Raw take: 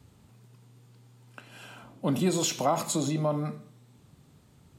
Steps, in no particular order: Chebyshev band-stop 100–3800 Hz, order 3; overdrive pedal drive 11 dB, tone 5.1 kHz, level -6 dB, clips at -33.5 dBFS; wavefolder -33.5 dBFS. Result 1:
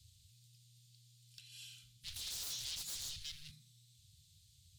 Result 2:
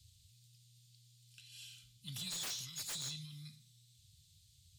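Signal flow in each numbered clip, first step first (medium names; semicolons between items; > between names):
wavefolder > Chebyshev band-stop > overdrive pedal; Chebyshev band-stop > wavefolder > overdrive pedal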